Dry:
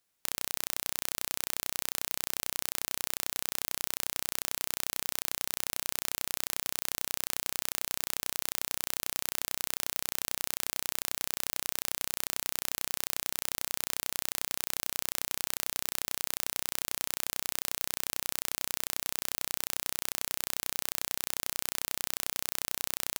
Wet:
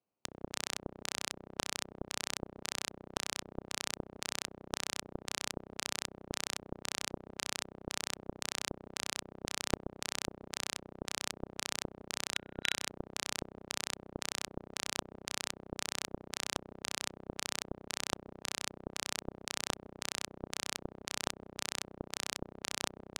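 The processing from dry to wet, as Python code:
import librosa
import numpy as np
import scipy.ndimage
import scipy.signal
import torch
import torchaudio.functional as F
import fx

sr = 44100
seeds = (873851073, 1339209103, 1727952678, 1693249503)

p1 = fx.wiener(x, sr, points=25)
p2 = scipy.signal.sosfilt(scipy.signal.butter(2, 100.0, 'highpass', fs=sr, output='sos'), p1)
p3 = fx.low_shelf(p2, sr, hz=140.0, db=-3.0)
p4 = fx.sample_hold(p3, sr, seeds[0], rate_hz=2600.0, jitter_pct=0)
p5 = p3 + (p4 * 10.0 ** (-12.0 / 20.0))
p6 = fx.spec_box(p5, sr, start_s=12.36, length_s=0.38, low_hz=1400.0, high_hz=3900.0, gain_db=11)
p7 = p6 + fx.echo_filtered(p6, sr, ms=155, feedback_pct=29, hz=970.0, wet_db=-17, dry=0)
y = fx.filter_lfo_lowpass(p7, sr, shape='square', hz=1.9, low_hz=440.0, high_hz=6600.0, q=0.85)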